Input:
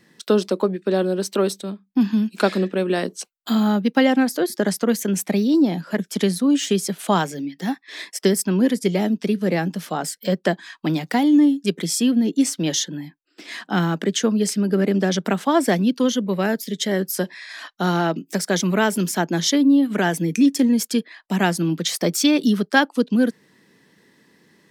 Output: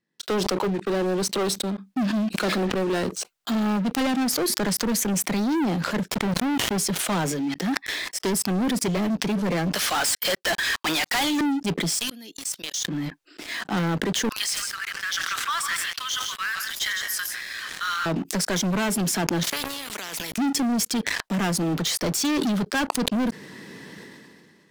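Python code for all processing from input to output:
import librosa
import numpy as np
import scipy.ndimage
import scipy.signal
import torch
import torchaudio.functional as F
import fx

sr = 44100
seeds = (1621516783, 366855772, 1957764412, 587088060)

y = fx.chain(x, sr, fx.halfwave_hold(),
    fx.lowpass(hz=1200.0, slope=6),
    fx.level_steps(step_db=22), at=(6.08, 6.78))
y = fx.chain(y, sr, fx.highpass(hz=1200.0, slope=12),
    fx.leveller(passes=5), at=(9.75, 11.41))
y = fx.chain(y, sr, fx.differentiator(),
    fx.level_steps(step_db=14), at=(11.98, 12.85))
y = fx.chain(y, sr, fx.steep_highpass(hz=1100.0, slope=72),
    fx.echo_multitap(ms=(94, 152, 160, 174), db=(-18.5, -11.0, -18.5, -13.0)), at=(14.29, 18.06))
y = fx.chain(y, sr, fx.highpass(hz=730.0, slope=6),
    fx.level_steps(step_db=20),
    fx.spectral_comp(ratio=4.0), at=(19.43, 20.38))
y = fx.high_shelf(y, sr, hz=11000.0, db=-6.5)
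y = fx.leveller(y, sr, passes=5)
y = fx.sustainer(y, sr, db_per_s=26.0)
y = F.gain(torch.from_numpy(y), -15.5).numpy()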